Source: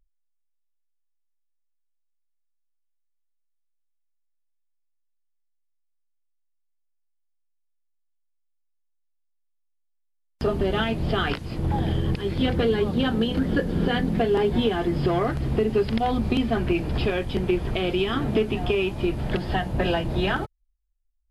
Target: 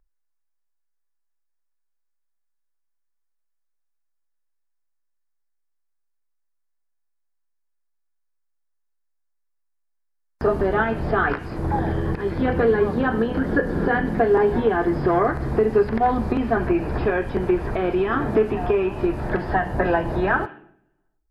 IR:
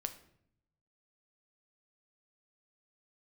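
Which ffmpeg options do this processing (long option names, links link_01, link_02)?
-filter_complex "[0:a]asplit=2[link_01][link_02];[link_02]highpass=310,equalizer=frequency=530:width_type=q:width=4:gain=-3,equalizer=frequency=1000:width_type=q:width=4:gain=4,equalizer=frequency=1700:width_type=q:width=4:gain=7,lowpass=frequency=3200:width=0.5412,lowpass=frequency=3200:width=1.3066[link_03];[1:a]atrim=start_sample=2205[link_04];[link_03][link_04]afir=irnorm=-1:irlink=0,volume=1dB[link_05];[link_01][link_05]amix=inputs=2:normalize=0,acrossover=split=2500[link_06][link_07];[link_07]acompressor=threshold=-50dB:ratio=4:attack=1:release=60[link_08];[link_06][link_08]amix=inputs=2:normalize=0"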